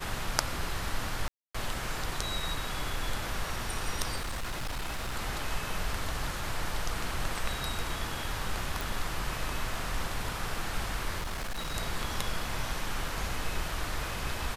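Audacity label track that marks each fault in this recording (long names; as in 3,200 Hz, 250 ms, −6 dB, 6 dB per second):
1.280000	1.540000	drop-out 265 ms
4.160000	5.170000	clipping −30.5 dBFS
8.810000	8.810000	click
11.200000	11.750000	clipping −31 dBFS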